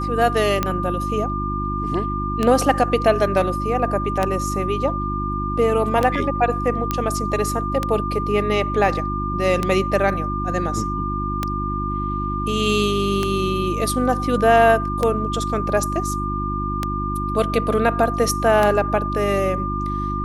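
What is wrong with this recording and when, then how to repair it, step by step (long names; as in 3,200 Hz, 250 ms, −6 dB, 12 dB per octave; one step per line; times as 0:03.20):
mains hum 50 Hz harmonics 7 −26 dBFS
scratch tick 33 1/3 rpm −6 dBFS
whistle 1,200 Hz −25 dBFS
0:06.91: click −7 dBFS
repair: click removal
hum removal 50 Hz, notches 7
notch filter 1,200 Hz, Q 30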